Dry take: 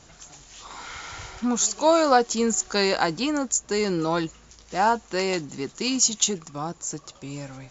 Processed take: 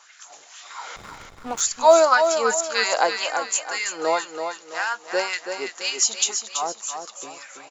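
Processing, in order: LFO high-pass sine 1.9 Hz 510–1900 Hz; 0.96–1.61 backlash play -24.5 dBFS; feedback echo 0.331 s, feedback 37%, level -7 dB

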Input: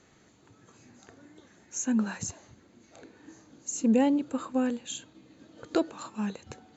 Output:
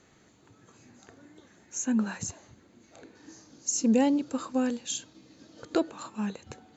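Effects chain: 3.15–5.65 bell 5300 Hz +12.5 dB 0.6 oct

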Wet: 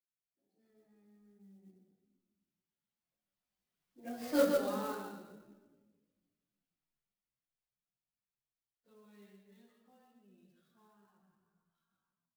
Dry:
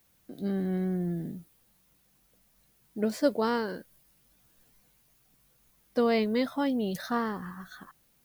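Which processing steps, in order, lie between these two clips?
median filter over 5 samples; Doppler pass-by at 2.91, 36 m/s, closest 2.5 m; high shelf 2500 Hz +7 dB; echo 0.102 s -5.5 dB; shoebox room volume 320 m³, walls mixed, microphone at 0.92 m; plain phase-vocoder stretch 1.5×; dynamic EQ 1200 Hz, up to +5 dB, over -48 dBFS, Q 1; clock jitter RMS 0.033 ms; gain -5 dB

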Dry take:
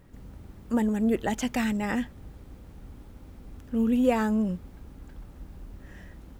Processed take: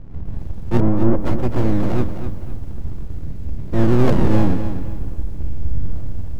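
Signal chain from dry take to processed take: octaver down 1 oct, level +1 dB; decimation with a swept rate 36×, swing 100% 0.5 Hz; tilt -4 dB/oct; full-wave rectifier; in parallel at -2.5 dB: compressor 8:1, threshold -36 dBFS, peak gain reduction 27 dB; 0.8–1.25 on the sum: LPF 1200 Hz 12 dB/oct; 5.32–5.96 flutter echo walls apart 10.4 m, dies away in 0.84 s; lo-fi delay 0.256 s, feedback 35%, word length 8-bit, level -9.5 dB; gain -1 dB

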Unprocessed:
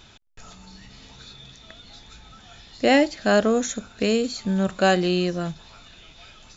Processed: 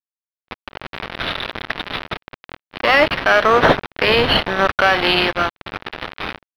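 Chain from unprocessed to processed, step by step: one diode to ground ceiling -16.5 dBFS; HPF 1200 Hz 12 dB/oct; high shelf 5300 Hz -5 dB; AGC gain up to 15 dB; bit-crush 5-bit; vibrato 1.3 Hz 9.2 cents; sample-and-hold 6×; air absorption 330 m; maximiser +14.5 dB; gain -1 dB

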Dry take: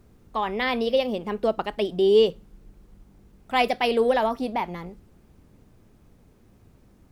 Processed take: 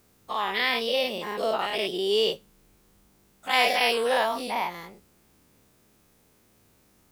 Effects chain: spectral dilation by 0.12 s; tilt +3 dB/oct; gain -6 dB

